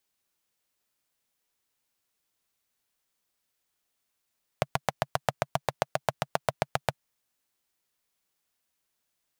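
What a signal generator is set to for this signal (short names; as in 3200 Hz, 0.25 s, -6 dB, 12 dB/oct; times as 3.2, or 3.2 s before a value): single-cylinder engine model, steady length 2.32 s, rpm 900, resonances 140/650 Hz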